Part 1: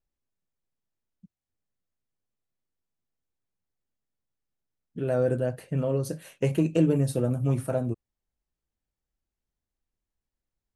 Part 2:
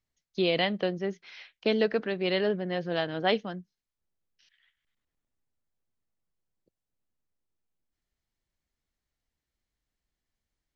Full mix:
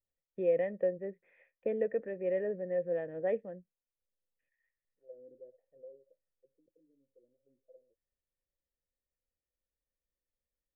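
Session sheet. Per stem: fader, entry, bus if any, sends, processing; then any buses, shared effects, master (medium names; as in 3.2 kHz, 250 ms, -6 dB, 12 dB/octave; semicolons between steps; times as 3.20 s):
5.80 s -10.5 dB -> 6.35 s -22.5 dB, 0.00 s, no send, auto-wah 280–1500 Hz, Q 4.9, down, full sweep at -20 dBFS; auto duck -8 dB, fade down 0.90 s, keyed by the second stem
+2.0 dB, 0.00 s, no send, tilt EQ -2 dB/octave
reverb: none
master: cascade formant filter e; treble shelf 2.2 kHz -9 dB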